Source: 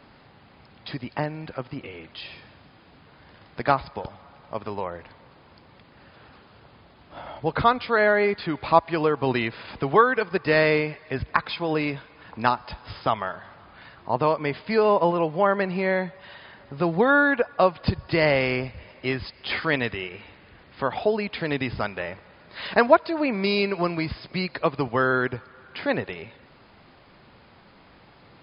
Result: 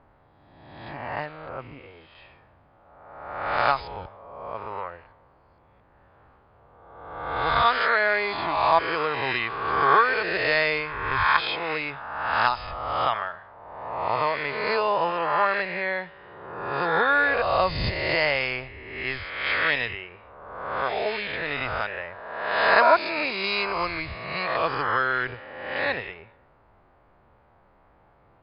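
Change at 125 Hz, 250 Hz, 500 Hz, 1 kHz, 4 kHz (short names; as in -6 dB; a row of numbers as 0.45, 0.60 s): -7.0, -10.5, -4.0, +2.0, +3.0 dB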